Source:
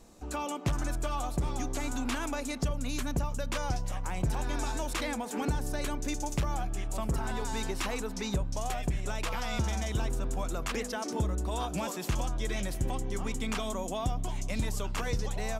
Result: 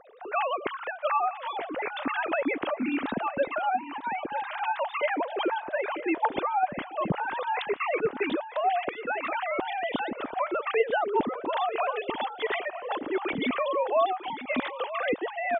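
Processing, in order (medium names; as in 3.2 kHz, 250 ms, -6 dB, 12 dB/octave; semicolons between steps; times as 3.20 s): formants replaced by sine waves; reverse; upward compressor, threshold -38 dBFS; reverse; delay 948 ms -13.5 dB; trim +2 dB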